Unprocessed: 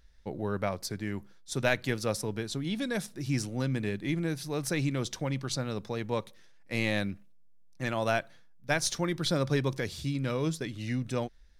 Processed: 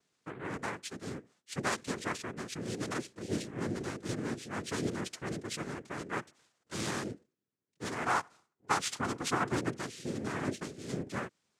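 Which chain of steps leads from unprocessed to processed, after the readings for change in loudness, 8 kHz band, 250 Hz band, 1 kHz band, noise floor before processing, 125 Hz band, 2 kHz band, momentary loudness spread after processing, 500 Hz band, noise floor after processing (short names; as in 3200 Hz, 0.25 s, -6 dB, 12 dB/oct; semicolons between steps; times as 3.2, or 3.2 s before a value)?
-4.5 dB, -3.0 dB, -5.0 dB, +1.5 dB, -54 dBFS, -9.0 dB, -3.5 dB, 11 LU, -6.5 dB, -84 dBFS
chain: noise vocoder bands 3; spectral gain 8.05–9.53, 670–1500 Hz +7 dB; gain -5.5 dB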